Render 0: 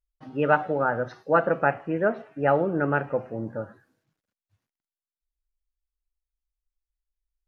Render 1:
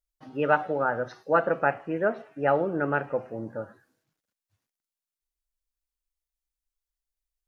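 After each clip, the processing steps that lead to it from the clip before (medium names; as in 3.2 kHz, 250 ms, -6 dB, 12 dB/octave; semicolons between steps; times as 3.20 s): tone controls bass -4 dB, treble +5 dB; trim -1.5 dB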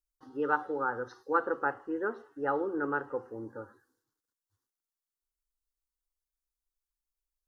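static phaser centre 640 Hz, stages 6; trim -2.5 dB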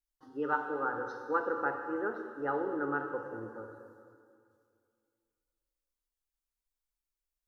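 plate-style reverb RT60 2.3 s, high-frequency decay 0.9×, DRR 4 dB; trim -3 dB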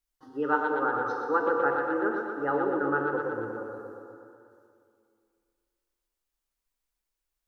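tape echo 120 ms, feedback 70%, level -4 dB, low-pass 3.6 kHz; trim +4.5 dB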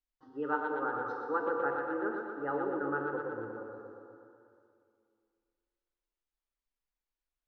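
distance through air 140 m; trim -6 dB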